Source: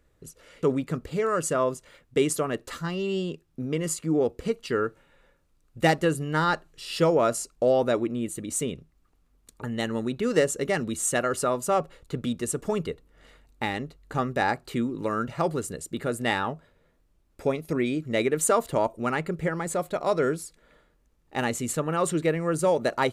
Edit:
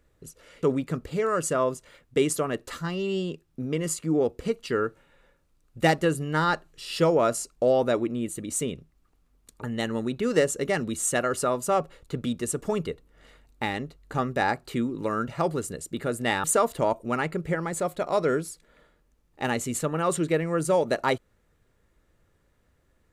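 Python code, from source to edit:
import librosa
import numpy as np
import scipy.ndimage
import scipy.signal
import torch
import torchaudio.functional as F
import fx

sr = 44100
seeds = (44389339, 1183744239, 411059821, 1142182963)

y = fx.edit(x, sr, fx.cut(start_s=16.44, length_s=1.94), tone=tone)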